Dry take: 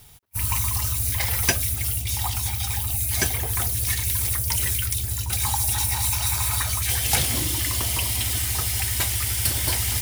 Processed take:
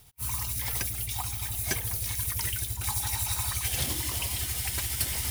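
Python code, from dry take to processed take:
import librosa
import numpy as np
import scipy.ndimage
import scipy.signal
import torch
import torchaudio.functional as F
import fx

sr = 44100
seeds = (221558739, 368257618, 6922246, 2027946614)

p1 = fx.stretch_grains(x, sr, factor=0.53, grain_ms=170.0)
p2 = p1 + fx.echo_single(p1, sr, ms=908, db=-18.5, dry=0)
y = p2 * 10.0 ** (-5.5 / 20.0)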